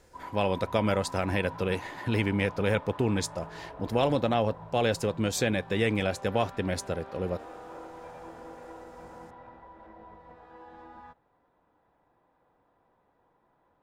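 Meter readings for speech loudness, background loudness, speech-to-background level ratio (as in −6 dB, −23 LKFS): −29.0 LKFS, −45.5 LKFS, 16.5 dB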